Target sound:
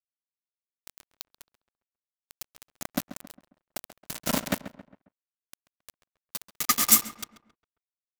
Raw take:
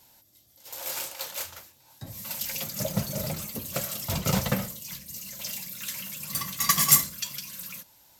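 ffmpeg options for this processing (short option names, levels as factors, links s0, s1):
-filter_complex "[0:a]afreqshift=70,aeval=exprs='val(0)*gte(abs(val(0)),0.0944)':c=same,asplit=2[s0][s1];[s1]adelay=135,lowpass=f=2200:p=1,volume=0.237,asplit=2[s2][s3];[s3]adelay=135,lowpass=f=2200:p=1,volume=0.44,asplit=2[s4][s5];[s5]adelay=135,lowpass=f=2200:p=1,volume=0.44,asplit=2[s6][s7];[s7]adelay=135,lowpass=f=2200:p=1,volume=0.44[s8];[s0][s2][s4][s6][s8]amix=inputs=5:normalize=0"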